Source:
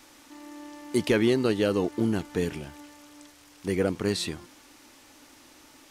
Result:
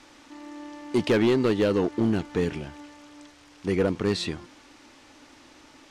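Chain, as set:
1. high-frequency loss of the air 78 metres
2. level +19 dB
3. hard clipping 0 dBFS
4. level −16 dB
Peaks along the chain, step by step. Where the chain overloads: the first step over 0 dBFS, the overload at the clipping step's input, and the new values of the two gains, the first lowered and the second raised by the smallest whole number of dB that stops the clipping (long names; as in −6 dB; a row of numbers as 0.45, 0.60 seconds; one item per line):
−12.5, +6.5, 0.0, −16.0 dBFS
step 2, 6.5 dB
step 2 +12 dB, step 4 −9 dB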